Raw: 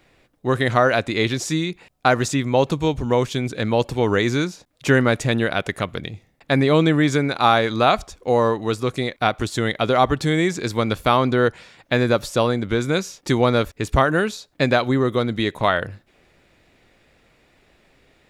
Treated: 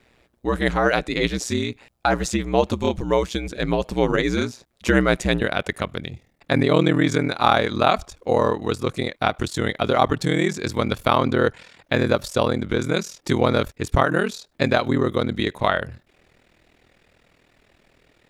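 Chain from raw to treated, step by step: ring modulator 61 Hz, from 5.41 s 20 Hz; gain +1.5 dB

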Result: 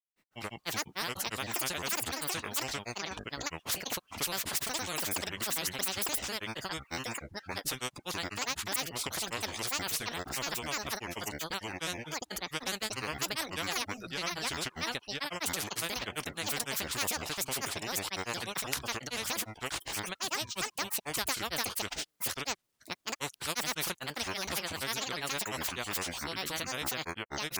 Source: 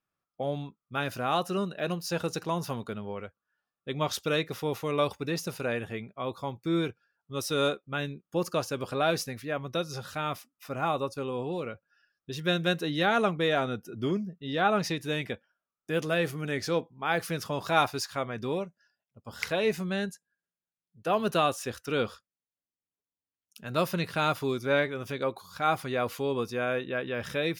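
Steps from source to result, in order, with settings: grains, grains 20/s, spray 0.805 s, pitch spread up and down by 12 st; spectral compressor 4:1

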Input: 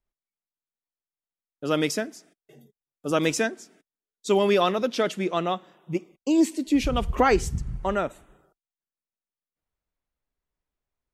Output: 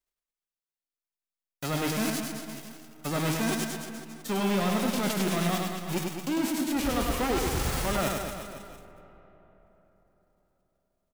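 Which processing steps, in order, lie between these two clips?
spectral whitening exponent 0.3; de-esser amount 65%; sample leveller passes 3; reverse; compressor, threshold -27 dBFS, peak gain reduction 12.5 dB; reverse; reverse bouncing-ball echo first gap 0.1 s, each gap 1.15×, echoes 5; on a send at -16 dB: reverb RT60 4.2 s, pre-delay 85 ms; on the sum: gain -1 dB

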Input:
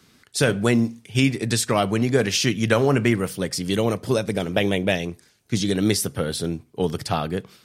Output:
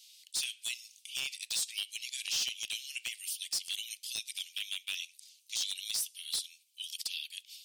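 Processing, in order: steep high-pass 2700 Hz 48 dB/oct; in parallel at +2 dB: compressor 12:1, threshold -43 dBFS, peak gain reduction 23.5 dB; on the sum: limiter -17.5 dBFS, peak gain reduction 8 dB; wavefolder -21.5 dBFS; gain -3.5 dB

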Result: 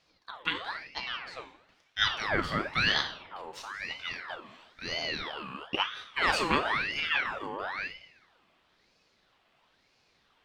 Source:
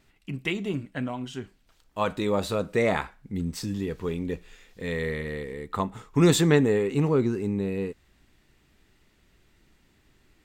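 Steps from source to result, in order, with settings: three-band isolator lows -14 dB, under 510 Hz, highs -17 dB, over 3800 Hz; two-slope reverb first 0.64 s, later 1.9 s, from -19 dB, DRR 4 dB; ring modulator with a swept carrier 1600 Hz, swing 60%, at 1 Hz; gain +2.5 dB

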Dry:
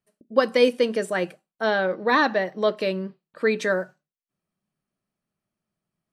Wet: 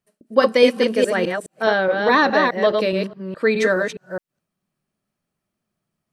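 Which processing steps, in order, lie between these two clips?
reverse delay 0.209 s, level -3.5 dB; gain +3.5 dB

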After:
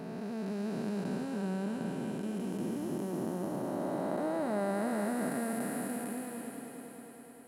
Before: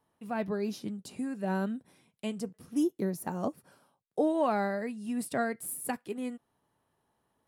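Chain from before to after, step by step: time blur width 1.22 s; swelling echo 0.102 s, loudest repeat 5, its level -18 dB; gain +5 dB

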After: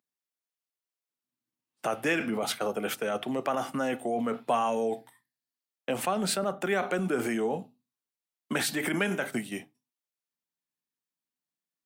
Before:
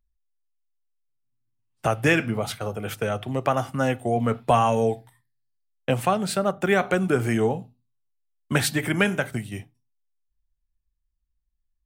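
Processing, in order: HPF 200 Hz 24 dB/oct; in parallel at -1 dB: negative-ratio compressor -29 dBFS, ratio -0.5; on the sum: gain -7.5 dB

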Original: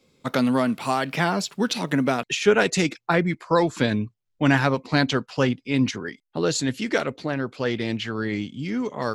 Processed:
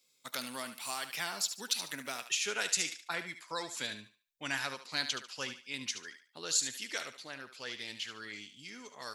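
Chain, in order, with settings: pre-emphasis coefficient 0.97; thinning echo 73 ms, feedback 31%, high-pass 580 Hz, level -9.5 dB

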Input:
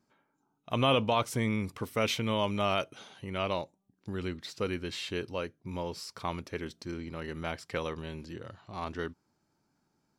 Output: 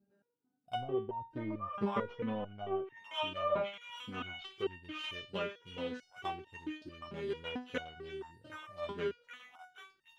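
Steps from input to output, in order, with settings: Wiener smoothing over 41 samples; HPF 41 Hz 24 dB/oct; bell 3200 Hz +8.5 dB 0.42 oct; delay with a stepping band-pass 0.77 s, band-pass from 1200 Hz, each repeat 0.7 oct, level -4 dB; in parallel at -11 dB: sample-and-hold 10×; on the sum: treble ducked by the level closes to 400 Hz, closed at -21.5 dBFS; stepped resonator 4.5 Hz 200–920 Hz; gain +12.5 dB

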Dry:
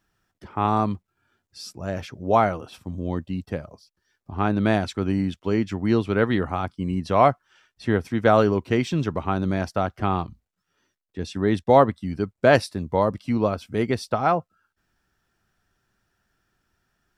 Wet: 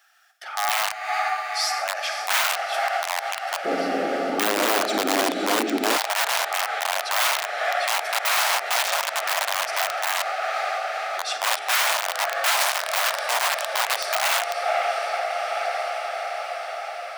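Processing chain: one-sided fold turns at -15 dBFS; Butterworth band-stop 1000 Hz, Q 3.7; diffused feedback echo 0.514 s, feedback 71%, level -10.5 dB; Schroeder reverb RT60 1.1 s, DRR 8 dB; de-esser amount 80%; wrapped overs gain 18 dB; compressor, threshold -31 dBFS, peak gain reduction 10 dB; elliptic high-pass 700 Hz, stop band 70 dB, from 3.64 s 260 Hz, from 5.96 s 650 Hz; maximiser +23.5 dB; gain -8 dB

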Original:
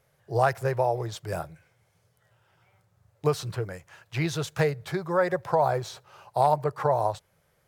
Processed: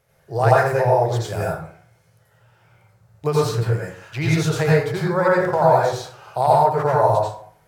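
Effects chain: plate-style reverb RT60 0.55 s, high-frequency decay 0.6×, pre-delay 75 ms, DRR -5.5 dB; gain +1.5 dB

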